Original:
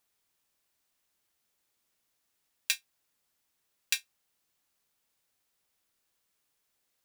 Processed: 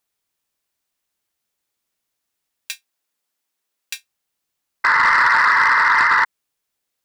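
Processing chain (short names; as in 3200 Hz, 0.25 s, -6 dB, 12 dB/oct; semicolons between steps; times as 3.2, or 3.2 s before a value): 2.75–3.95 HPF 210 Hz 12 dB/oct; 4.84–6.25 painted sound noise 870–2100 Hz -12 dBFS; soft clip -8 dBFS, distortion -15 dB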